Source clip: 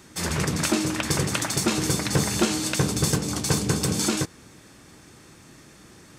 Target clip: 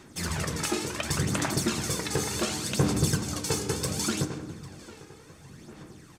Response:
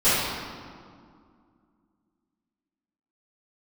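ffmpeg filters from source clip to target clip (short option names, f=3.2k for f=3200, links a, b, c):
-filter_complex "[0:a]asplit=2[a][b];[b]adelay=800,lowpass=f=3k:p=1,volume=-15dB,asplit=2[c][d];[d]adelay=800,lowpass=f=3k:p=1,volume=0.5,asplit=2[e][f];[f]adelay=800,lowpass=f=3k:p=1,volume=0.5,asplit=2[g][h];[h]adelay=800,lowpass=f=3k:p=1,volume=0.5,asplit=2[i][j];[j]adelay=800,lowpass=f=3k:p=1,volume=0.5[k];[a][c][e][g][i][k]amix=inputs=6:normalize=0,aphaser=in_gain=1:out_gain=1:delay=2.4:decay=0.53:speed=0.69:type=sinusoidal,asplit=2[l][m];[1:a]atrim=start_sample=2205,asetrate=66150,aresample=44100[n];[m][n]afir=irnorm=-1:irlink=0,volume=-26dB[o];[l][o]amix=inputs=2:normalize=0,volume=-6.5dB"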